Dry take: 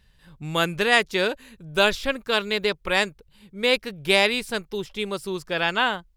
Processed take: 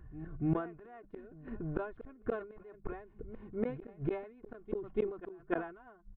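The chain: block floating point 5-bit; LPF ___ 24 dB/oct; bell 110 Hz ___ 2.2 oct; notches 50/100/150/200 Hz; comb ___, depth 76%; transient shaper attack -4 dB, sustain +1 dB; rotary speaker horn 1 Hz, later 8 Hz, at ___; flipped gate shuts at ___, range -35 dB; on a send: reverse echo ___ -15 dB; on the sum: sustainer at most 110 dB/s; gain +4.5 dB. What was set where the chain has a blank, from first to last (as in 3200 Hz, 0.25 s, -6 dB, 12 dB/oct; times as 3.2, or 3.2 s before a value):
1400 Hz, +7.5 dB, 2.8 ms, 3.28, -25 dBFS, 0.289 s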